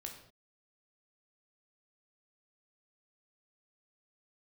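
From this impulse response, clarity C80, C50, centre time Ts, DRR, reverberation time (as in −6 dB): 9.5 dB, 7.0 dB, 24 ms, 1.5 dB, non-exponential decay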